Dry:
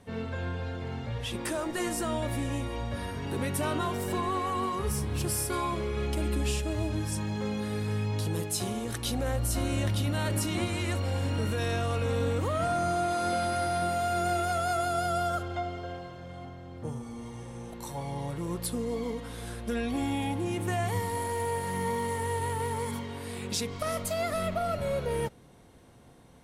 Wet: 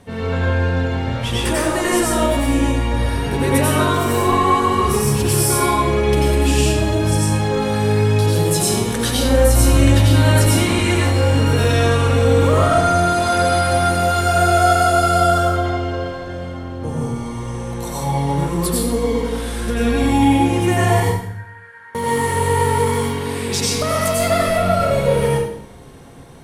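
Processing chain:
0:21.00–0:21.95: resonant band-pass 1,600 Hz, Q 15
convolution reverb RT60 0.75 s, pre-delay 84 ms, DRR −5 dB
level +8.5 dB

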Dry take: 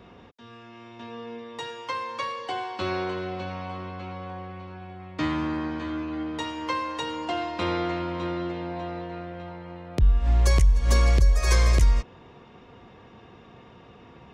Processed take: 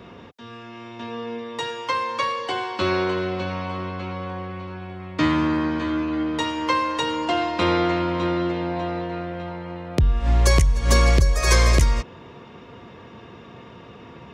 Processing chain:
high-pass filter 70 Hz
notch filter 760 Hz, Q 12
level +7 dB

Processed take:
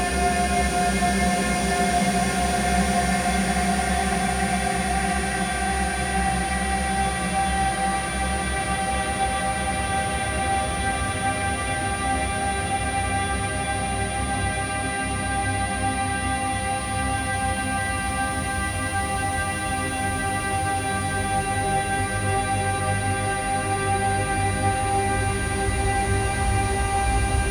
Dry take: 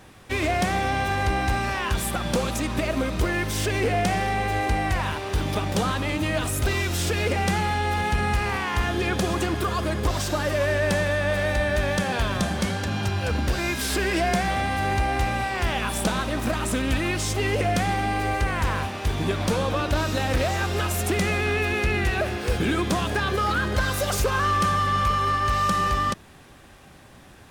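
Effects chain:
extreme stretch with random phases 40×, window 0.25 s, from 0:14.30
steady tone 9,600 Hz −34 dBFS

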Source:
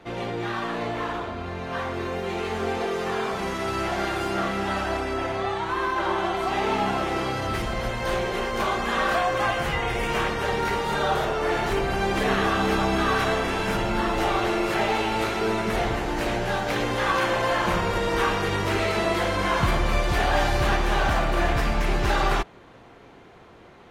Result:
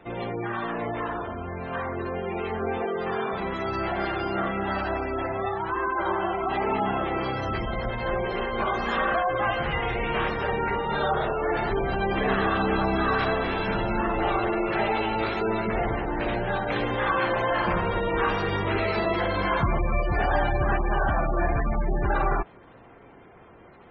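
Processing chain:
gate on every frequency bin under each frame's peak −20 dB strong
level −1 dB

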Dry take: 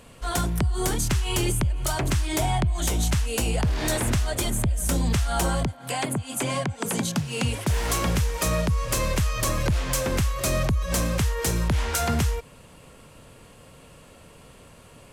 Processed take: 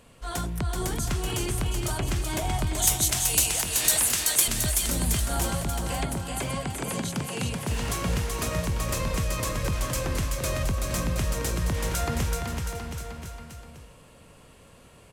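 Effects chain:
0:02.73–0:04.48: spectral tilt +4.5 dB per octave
bouncing-ball delay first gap 380 ms, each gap 0.9×, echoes 5
level −5.5 dB

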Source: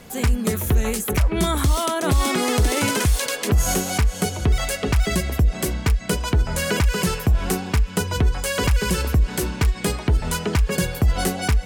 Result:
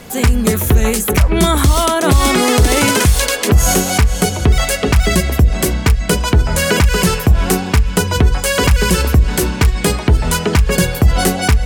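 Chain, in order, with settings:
mains-hum notches 50/100/150/200 Hz
level +8.5 dB

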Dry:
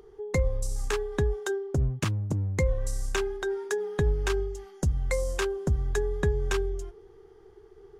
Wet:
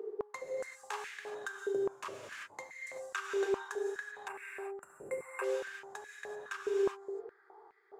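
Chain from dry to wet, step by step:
adaptive Wiener filter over 15 samples
reverb whose tail is shaped and stops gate 410 ms flat, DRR 0 dB
reversed playback
downward compressor 8 to 1, threshold −35 dBFS, peak gain reduction 17 dB
reversed playback
gain on a spectral selection 0:04.28–0:05.44, 2,800–7,200 Hz −20 dB
high-pass on a step sequencer 4.8 Hz 430–2,000 Hz

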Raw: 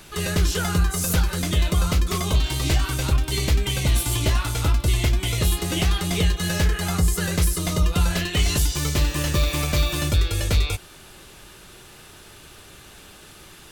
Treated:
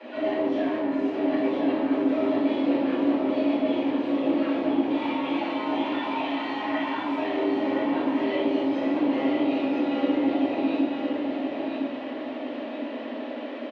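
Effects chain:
0:04.89–0:07.17: low shelf with overshoot 450 Hz −14 dB, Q 3
brickwall limiter −21 dBFS, peak gain reduction 10.5 dB
asymmetric clip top −29.5 dBFS
flanger 0.52 Hz, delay 9.3 ms, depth 1.4 ms, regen −78%
frequency shifter +220 Hz
soft clipping −39 dBFS, distortion −9 dB
loudspeaker in its box 170–2,700 Hz, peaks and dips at 240 Hz +7 dB, 590 Hz +10 dB, 1,500 Hz −9 dB
repeating echo 1,014 ms, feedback 38%, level −5 dB
convolution reverb RT60 1.0 s, pre-delay 8 ms, DRR −11 dB

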